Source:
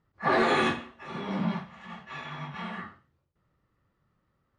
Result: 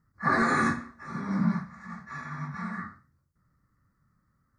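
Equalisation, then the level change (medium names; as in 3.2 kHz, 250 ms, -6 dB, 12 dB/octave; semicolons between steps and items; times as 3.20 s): Butterworth band-stop 3 kHz, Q 1; high-order bell 560 Hz -11 dB; +4.0 dB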